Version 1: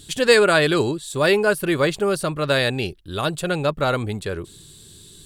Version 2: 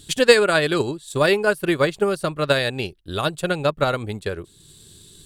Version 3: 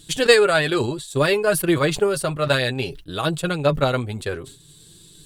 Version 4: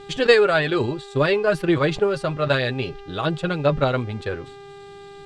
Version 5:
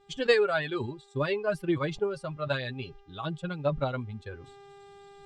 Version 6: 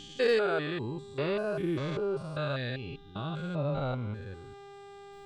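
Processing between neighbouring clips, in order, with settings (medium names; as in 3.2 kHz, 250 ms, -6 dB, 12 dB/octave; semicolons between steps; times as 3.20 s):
transient shaper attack +6 dB, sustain -6 dB; trim -2 dB
flange 0.6 Hz, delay 5.9 ms, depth 2.5 ms, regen +25%; decay stretcher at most 100 dB/s; trim +3 dB
mains buzz 400 Hz, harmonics 37, -41 dBFS -7 dB/octave; distance through air 140 m
expander on every frequency bin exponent 1.5; reverse; upward compressor, threshold -34 dBFS; reverse; trim -7 dB
spectrogram pixelated in time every 200 ms; hard clipper -21 dBFS, distortion -35 dB; trim +2.5 dB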